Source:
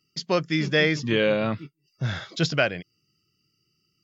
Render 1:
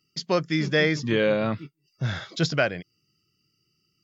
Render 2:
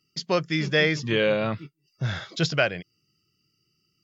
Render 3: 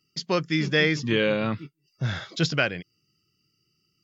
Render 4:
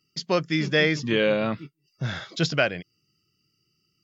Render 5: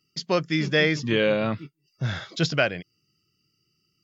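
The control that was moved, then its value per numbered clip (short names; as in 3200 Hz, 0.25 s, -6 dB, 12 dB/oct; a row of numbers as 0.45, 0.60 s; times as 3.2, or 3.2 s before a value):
dynamic EQ, frequency: 2800, 260, 640, 100, 8300 Hz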